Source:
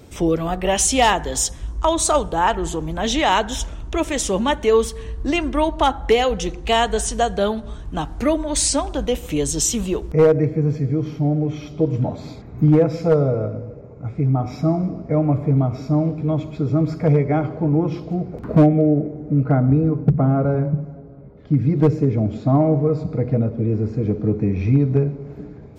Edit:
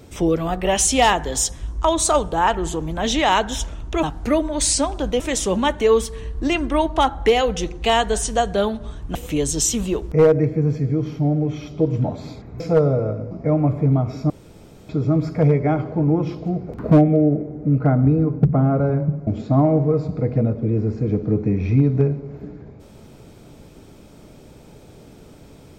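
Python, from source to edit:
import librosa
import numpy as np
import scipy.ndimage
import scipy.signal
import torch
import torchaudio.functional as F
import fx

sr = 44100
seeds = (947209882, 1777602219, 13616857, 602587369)

y = fx.edit(x, sr, fx.move(start_s=7.98, length_s=1.17, to_s=4.03),
    fx.cut(start_s=12.6, length_s=0.35),
    fx.cut(start_s=13.66, length_s=1.3),
    fx.room_tone_fill(start_s=15.95, length_s=0.59),
    fx.cut(start_s=20.92, length_s=1.31), tone=tone)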